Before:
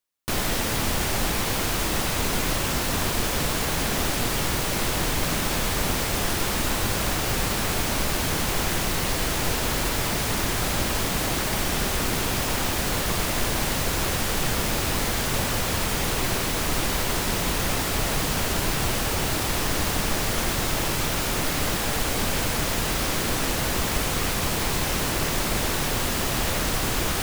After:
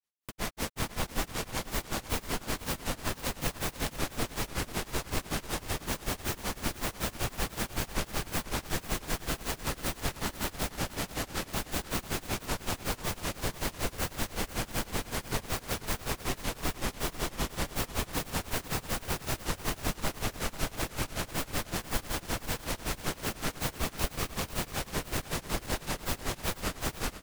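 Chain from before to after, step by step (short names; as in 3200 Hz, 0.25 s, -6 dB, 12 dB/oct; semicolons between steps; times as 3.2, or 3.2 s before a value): self-modulated delay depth 0.42 ms; grains 0.134 s, grains 5.3/s; lo-fi delay 0.492 s, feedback 35%, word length 8-bit, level -13 dB; gain -2.5 dB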